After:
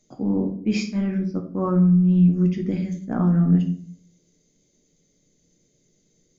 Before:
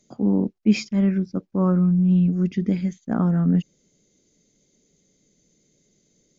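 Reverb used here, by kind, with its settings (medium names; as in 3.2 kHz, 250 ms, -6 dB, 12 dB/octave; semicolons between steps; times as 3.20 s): simulated room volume 57 m³, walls mixed, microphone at 0.52 m; trim -3 dB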